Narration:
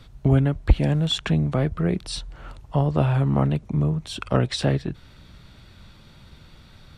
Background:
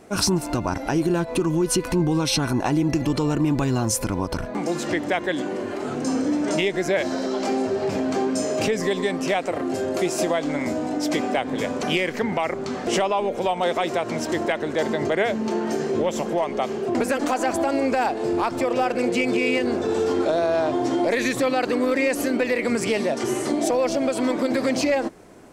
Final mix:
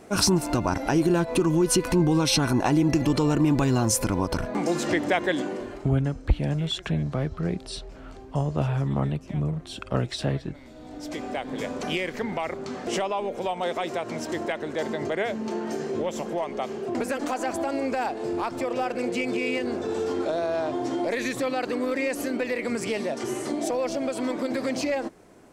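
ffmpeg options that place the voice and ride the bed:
-filter_complex "[0:a]adelay=5600,volume=-5dB[a];[1:a]volume=17.5dB,afade=t=out:st=5.3:d=0.62:silence=0.0707946,afade=t=in:st=10.72:d=0.88:silence=0.133352[b];[a][b]amix=inputs=2:normalize=0"

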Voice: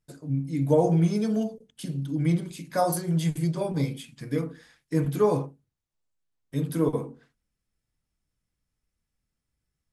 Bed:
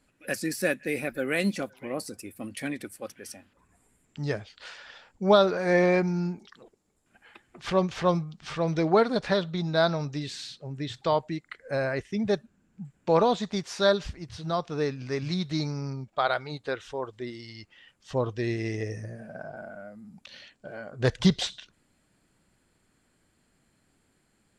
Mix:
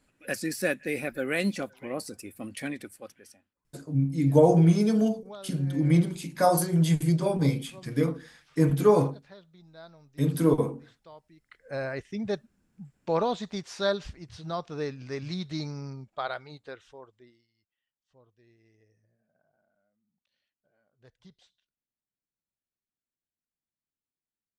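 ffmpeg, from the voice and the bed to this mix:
-filter_complex "[0:a]adelay=3650,volume=2.5dB[a];[1:a]volume=19.5dB,afade=t=out:st=2.63:d=0.89:silence=0.0630957,afade=t=in:st=11.36:d=0.43:silence=0.0944061,afade=t=out:st=15.79:d=1.69:silence=0.0354813[b];[a][b]amix=inputs=2:normalize=0"

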